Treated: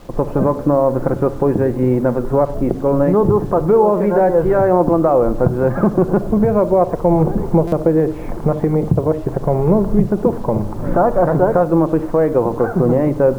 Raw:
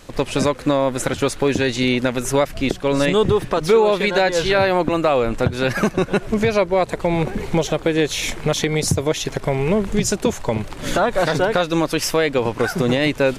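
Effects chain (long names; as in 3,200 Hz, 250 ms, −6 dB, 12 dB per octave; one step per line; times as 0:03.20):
low-pass filter 1,100 Hz 24 dB per octave
in parallel at −1 dB: brickwall limiter −14 dBFS, peak gain reduction 7.5 dB
on the sum: bit reduction 8 bits
convolution reverb RT60 0.75 s, pre-delay 6 ms, DRR 10 dB
buffer that repeats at 0:07.67, samples 256, times 8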